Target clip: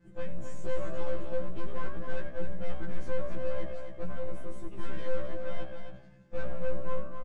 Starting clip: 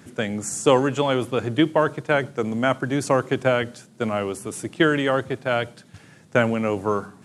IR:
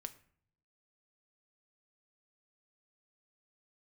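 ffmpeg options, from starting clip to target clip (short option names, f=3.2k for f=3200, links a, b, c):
-filter_complex "[0:a]afftfilt=real='hypot(re,im)*cos(PI*b)':imag='0':win_size=1024:overlap=0.75,agate=range=-33dB:threshold=-49dB:ratio=3:detection=peak,equalizer=f=72:w=1.8:g=9,asplit=2[a][b];[b]asplit=3[c][d][e];[c]adelay=93,afreqshift=66,volume=-15dB[f];[d]adelay=186,afreqshift=132,volume=-24.1dB[g];[e]adelay=279,afreqshift=198,volume=-33.2dB[h];[f][g][h]amix=inputs=3:normalize=0[i];[a][i]amix=inputs=2:normalize=0,aeval=exprs='(tanh(50.1*val(0)+0.45)-tanh(0.45))/50.1':c=same,aemphasis=mode=reproduction:type=riaa,asplit=2[j][k];[k]aecho=0:1:263:0.447[l];[j][l]amix=inputs=2:normalize=0,afftfilt=real='re*1.73*eq(mod(b,3),0)':imag='im*1.73*eq(mod(b,3),0)':win_size=2048:overlap=0.75,volume=-3dB"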